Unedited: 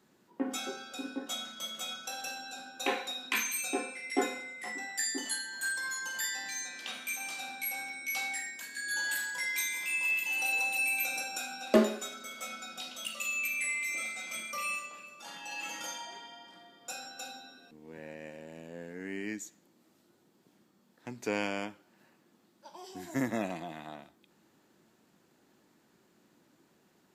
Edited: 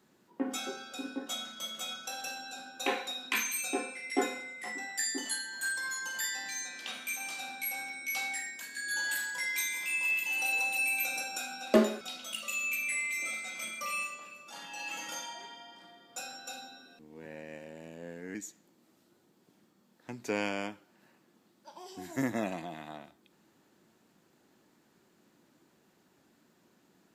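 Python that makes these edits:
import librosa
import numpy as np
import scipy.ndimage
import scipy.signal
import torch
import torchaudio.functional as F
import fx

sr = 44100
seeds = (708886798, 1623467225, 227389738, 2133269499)

y = fx.edit(x, sr, fx.cut(start_s=12.01, length_s=0.72),
    fx.cut(start_s=19.07, length_s=0.26), tone=tone)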